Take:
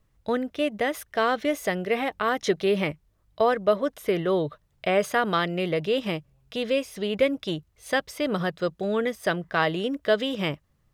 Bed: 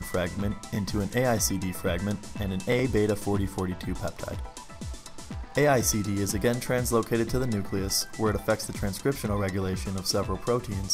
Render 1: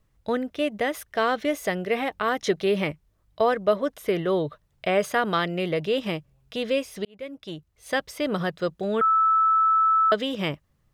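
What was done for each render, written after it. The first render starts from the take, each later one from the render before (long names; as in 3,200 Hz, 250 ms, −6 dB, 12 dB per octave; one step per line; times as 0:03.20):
0:07.05–0:08.07: fade in linear
0:09.01–0:10.12: beep over 1,310 Hz −16.5 dBFS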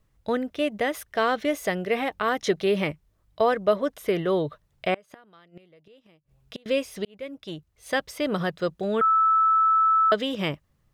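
0:04.94–0:06.66: gate with flip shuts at −22 dBFS, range −30 dB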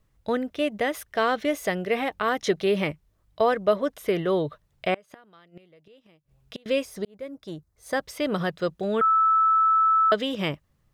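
0:06.85–0:08.03: parametric band 2,800 Hz −11 dB 0.78 octaves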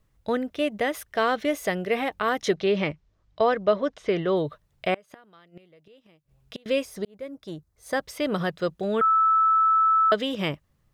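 0:02.55–0:04.37: low-pass filter 6,400 Hz 24 dB per octave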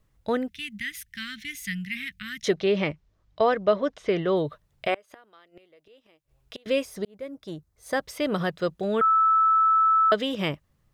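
0:00.48–0:02.44: elliptic band-stop filter 200–1,900 Hz, stop band 50 dB
0:04.87–0:06.67: parametric band 170 Hz −14.5 dB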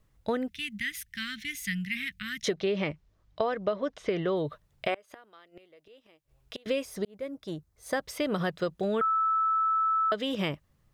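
downward compressor 6 to 1, threshold −25 dBFS, peak gain reduction 10 dB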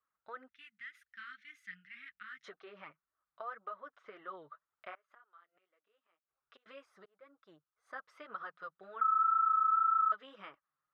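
resonant band-pass 1,300 Hz, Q 4.7
flanger 1.9 Hz, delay 2.3 ms, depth 5.5 ms, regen −2%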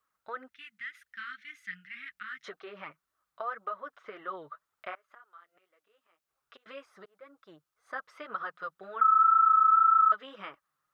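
level +7.5 dB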